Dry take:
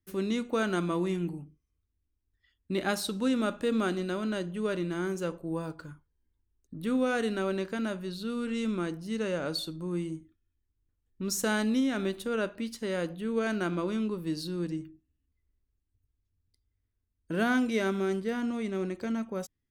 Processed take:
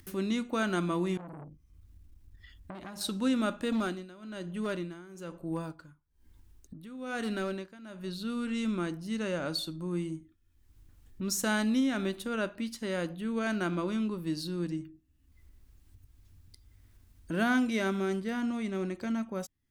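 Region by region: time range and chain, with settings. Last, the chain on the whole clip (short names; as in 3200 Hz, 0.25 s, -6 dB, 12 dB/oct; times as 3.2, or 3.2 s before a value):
1.17–3.01 low shelf 270 Hz +10.5 dB + compressor 10:1, threshold -35 dBFS + core saturation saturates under 1200 Hz
3.72–8.04 tremolo 1.1 Hz, depth 91% + hard clip -25 dBFS
whole clip: bell 450 Hz -7 dB 0.32 oct; upward compressor, threshold -39 dBFS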